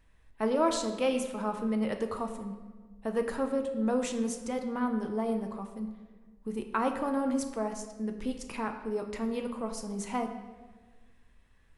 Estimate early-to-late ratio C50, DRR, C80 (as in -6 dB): 8.0 dB, 4.5 dB, 9.5 dB